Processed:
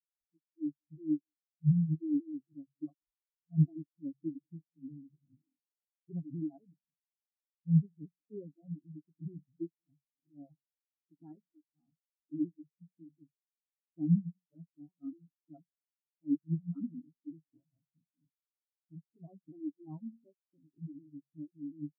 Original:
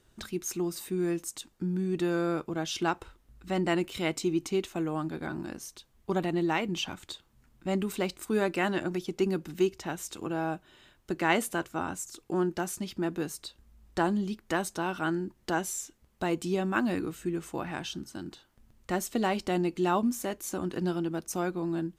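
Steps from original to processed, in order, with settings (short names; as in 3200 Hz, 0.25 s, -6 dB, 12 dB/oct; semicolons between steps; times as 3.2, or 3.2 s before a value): repeated pitch sweeps -3.5 st, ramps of 0.244 s; LPF 1500 Hz; de-hum 45.79 Hz, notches 5; spectral gate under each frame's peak -15 dB strong; low shelf 200 Hz +9.5 dB; comb 7.3 ms, depth 37%; outdoor echo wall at 31 m, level -17 dB; spectral expander 4:1; gain -4 dB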